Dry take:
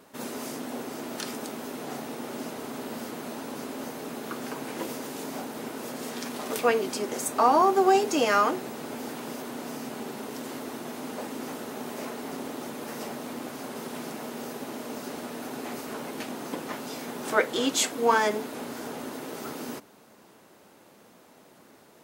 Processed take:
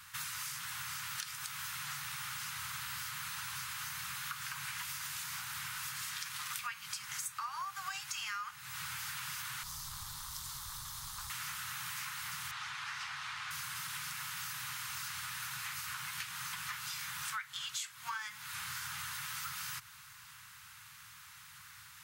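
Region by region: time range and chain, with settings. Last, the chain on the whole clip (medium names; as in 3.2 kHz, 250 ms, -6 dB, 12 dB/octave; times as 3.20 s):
9.63–11.30 s: high-order bell 2 kHz -13 dB 1.3 oct + band-stop 2.5 kHz, Q 28 + valve stage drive 29 dB, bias 0.75
12.51–13.51 s: low-pass 4.5 kHz + resonant low shelf 390 Hz -7 dB, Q 3
whole clip: inverse Chebyshev band-stop 260–580 Hz, stop band 60 dB; compression 10:1, threshold -45 dBFS; trim +7 dB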